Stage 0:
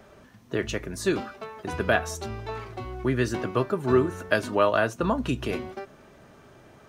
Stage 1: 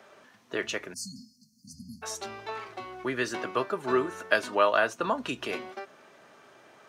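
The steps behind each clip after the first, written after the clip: spectral delete 0.94–2.03, 270–4200 Hz; weighting filter A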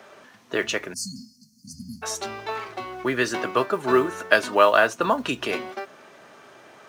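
modulation noise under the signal 34 dB; gain +6.5 dB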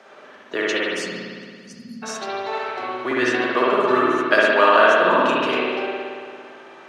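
three-band isolator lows -19 dB, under 170 Hz, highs -13 dB, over 7600 Hz; spring tank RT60 2 s, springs 56 ms, chirp 20 ms, DRR -5.5 dB; gain -1 dB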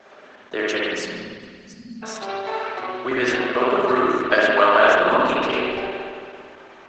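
Opus 12 kbps 48000 Hz

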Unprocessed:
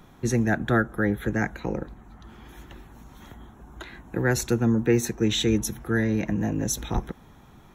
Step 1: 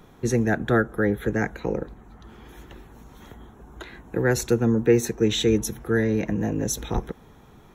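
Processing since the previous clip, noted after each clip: bell 450 Hz +7 dB 0.44 oct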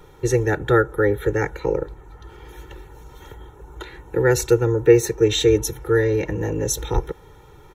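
comb 2.2 ms, depth 94%; gain +1 dB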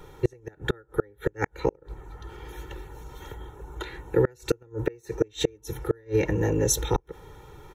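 flipped gate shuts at -10 dBFS, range -34 dB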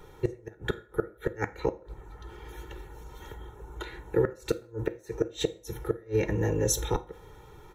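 reverb RT60 0.50 s, pre-delay 5 ms, DRR 10.5 dB; gain -3.5 dB

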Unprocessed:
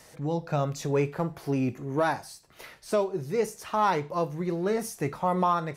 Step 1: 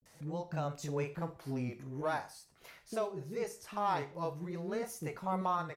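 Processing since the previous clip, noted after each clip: bands offset in time lows, highs 40 ms, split 360 Hz; vibrato 0.44 Hz 79 cents; Schroeder reverb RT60 0.37 s, combs from 32 ms, DRR 14.5 dB; gain -8.5 dB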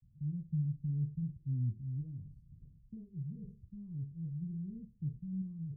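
inverse Chebyshev low-pass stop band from 690 Hz, stop band 70 dB; reverse; upward compressor, threshold -50 dBFS; reverse; gain +8.5 dB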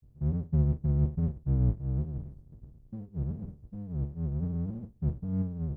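octaver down 1 oct, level -1 dB; in parallel at -8 dB: crossover distortion -50 dBFS; on the sum: gain +3.5 dB

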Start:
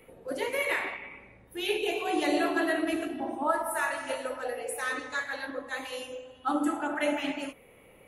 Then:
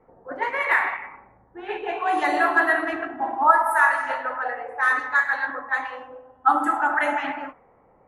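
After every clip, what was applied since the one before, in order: band shelf 1200 Hz +15 dB; low-pass opened by the level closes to 580 Hz, open at -15.5 dBFS; gain -2 dB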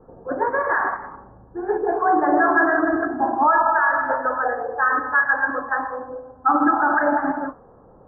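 low shelf 330 Hz +9.5 dB; limiter -12.5 dBFS, peak gain reduction 10 dB; rippled Chebyshev low-pass 1700 Hz, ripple 3 dB; gain +6 dB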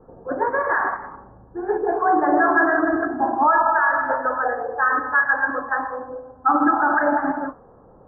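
nothing audible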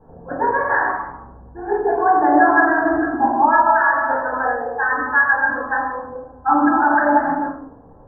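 reverb RT60 0.50 s, pre-delay 13 ms, DRR 0 dB; gain -2.5 dB

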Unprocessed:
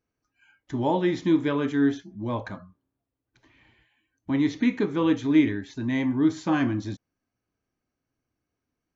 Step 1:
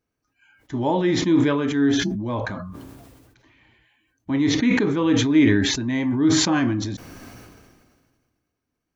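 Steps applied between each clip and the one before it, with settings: sustainer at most 32 dB/s; gain +2 dB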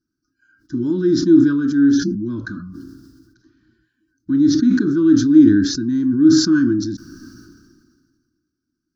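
EQ curve 110 Hz 0 dB, 180 Hz +4 dB, 340 Hz +10 dB, 480 Hz -20 dB, 780 Hz -30 dB, 1500 Hz +7 dB, 2100 Hz -25 dB, 3200 Hz -13 dB, 5000 Hz +9 dB, 7600 Hz -6 dB; gain -2 dB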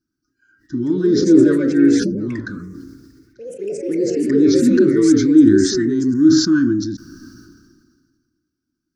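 echoes that change speed 0.279 s, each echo +3 st, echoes 3, each echo -6 dB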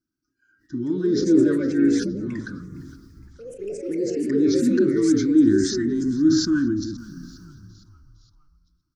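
frequency-shifting echo 0.461 s, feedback 54%, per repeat -70 Hz, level -20 dB; gain -6 dB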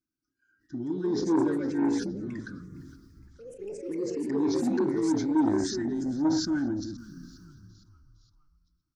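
core saturation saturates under 450 Hz; gain -6.5 dB

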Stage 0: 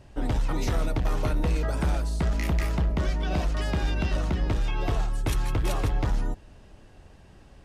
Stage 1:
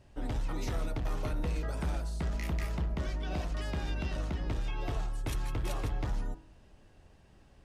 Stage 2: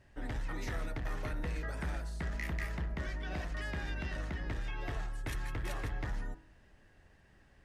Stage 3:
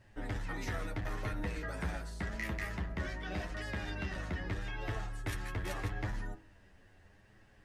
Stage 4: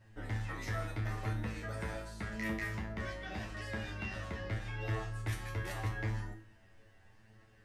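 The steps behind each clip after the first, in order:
de-hum 46.14 Hz, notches 36; gain -7.5 dB
bell 1800 Hz +11.5 dB 0.56 oct; gain -4.5 dB
flange 0.81 Hz, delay 9.1 ms, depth 2 ms, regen +24%; gain +5 dB
resonator 110 Hz, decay 0.4 s, harmonics all, mix 90%; gain +9.5 dB

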